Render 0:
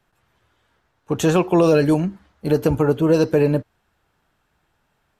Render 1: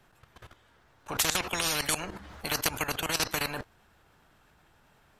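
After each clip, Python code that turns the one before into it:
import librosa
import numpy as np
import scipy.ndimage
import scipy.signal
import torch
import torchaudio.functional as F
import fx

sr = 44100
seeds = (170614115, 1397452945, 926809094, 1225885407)

y = fx.level_steps(x, sr, step_db=16)
y = fx.spectral_comp(y, sr, ratio=10.0)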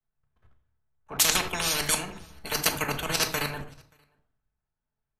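y = x + 10.0 ** (-17.5 / 20.0) * np.pad(x, (int(580 * sr / 1000.0), 0))[:len(x)]
y = fx.room_shoebox(y, sr, seeds[0], volume_m3=960.0, walls='furnished', distance_m=1.5)
y = fx.band_widen(y, sr, depth_pct=100)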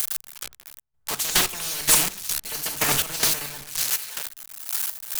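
y = x + 0.5 * 10.0 ** (-15.0 / 20.0) * np.diff(np.sign(x), prepend=np.sign(x[:1]))
y = fx.step_gate(y, sr, bpm=144, pattern='xx..x....', floor_db=-12.0, edge_ms=4.5)
y = fx.doppler_dist(y, sr, depth_ms=0.61)
y = F.gain(torch.from_numpy(y), 4.0).numpy()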